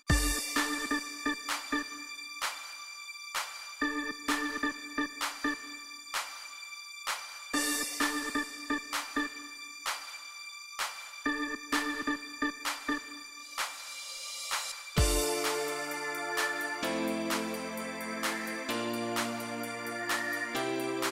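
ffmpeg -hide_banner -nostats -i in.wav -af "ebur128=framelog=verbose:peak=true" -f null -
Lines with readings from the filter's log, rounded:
Integrated loudness:
  I:         -33.7 LUFS
  Threshold: -43.7 LUFS
Loudness range:
  LRA:         3.6 LU
  Threshold: -54.0 LUFS
  LRA low:   -35.5 LUFS
  LRA high:  -31.9 LUFS
True peak:
  Peak:      -11.3 dBFS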